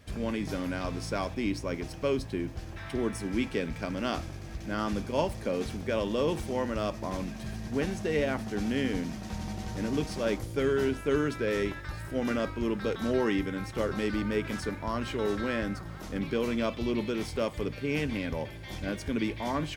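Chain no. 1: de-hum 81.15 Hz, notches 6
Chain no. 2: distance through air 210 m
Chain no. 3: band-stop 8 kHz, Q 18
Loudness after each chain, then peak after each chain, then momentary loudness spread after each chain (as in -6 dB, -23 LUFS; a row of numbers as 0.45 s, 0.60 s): -32.0 LUFS, -32.5 LUFS, -32.0 LUFS; -13.0 dBFS, -14.5 dBFS, -13.5 dBFS; 7 LU, 8 LU, 7 LU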